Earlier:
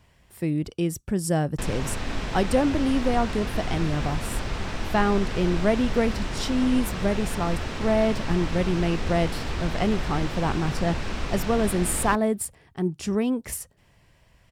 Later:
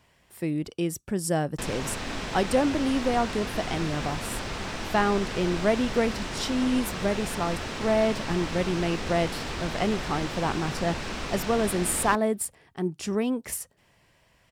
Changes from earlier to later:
background: add tone controls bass +2 dB, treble +3 dB; master: add bass shelf 130 Hz -12 dB

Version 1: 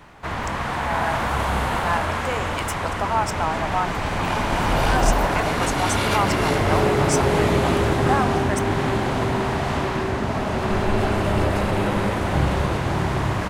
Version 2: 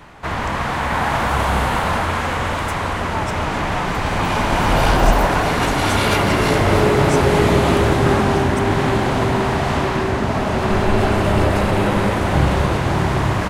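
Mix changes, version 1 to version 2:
speech -6.0 dB; background +4.5 dB

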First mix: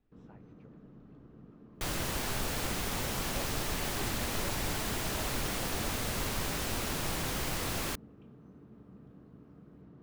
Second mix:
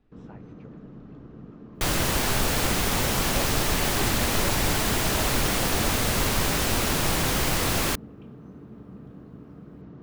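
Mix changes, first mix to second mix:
speech +9.5 dB; first sound +10.0 dB; second sound +10.0 dB

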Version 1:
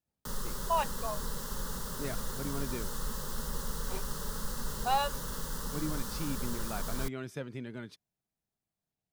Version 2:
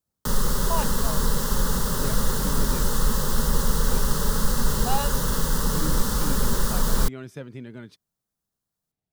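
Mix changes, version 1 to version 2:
background +12.0 dB; master: add bass shelf 420 Hz +3.5 dB

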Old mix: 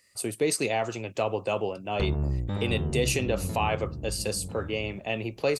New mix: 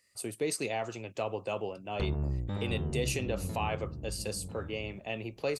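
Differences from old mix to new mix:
speech -6.5 dB; background -4.5 dB

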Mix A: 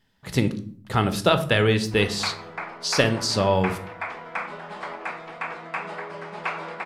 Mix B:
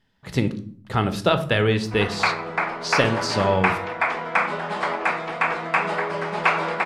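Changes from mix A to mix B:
speech: add treble shelf 7.1 kHz -9.5 dB; background +9.5 dB

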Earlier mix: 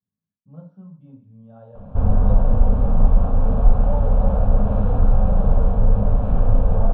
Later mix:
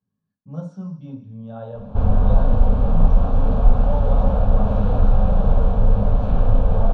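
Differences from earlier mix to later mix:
speech +9.5 dB; master: remove distance through air 420 m

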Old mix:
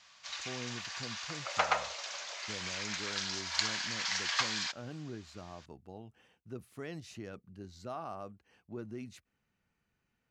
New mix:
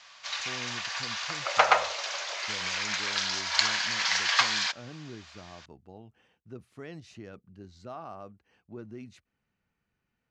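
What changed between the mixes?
background +9.0 dB; master: add distance through air 57 m

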